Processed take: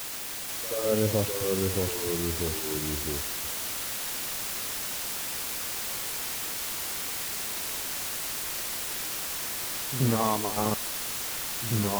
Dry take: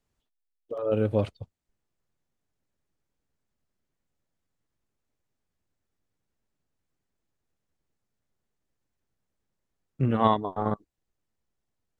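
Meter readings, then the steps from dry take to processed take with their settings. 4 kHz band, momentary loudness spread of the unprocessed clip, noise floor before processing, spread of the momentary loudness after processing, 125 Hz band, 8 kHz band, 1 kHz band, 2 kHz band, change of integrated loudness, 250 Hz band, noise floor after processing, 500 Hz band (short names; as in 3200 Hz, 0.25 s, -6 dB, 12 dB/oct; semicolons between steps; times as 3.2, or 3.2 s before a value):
+18.0 dB, 12 LU, -82 dBFS, 4 LU, +2.0 dB, n/a, -1.5 dB, +15.0 dB, -2.0 dB, +1.0 dB, -34 dBFS, +1.5 dB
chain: limiter -14.5 dBFS, peak gain reduction 8.5 dB; reverse echo 79 ms -11 dB; requantised 6-bit, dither triangular; echoes that change speed 0.483 s, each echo -2 st, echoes 3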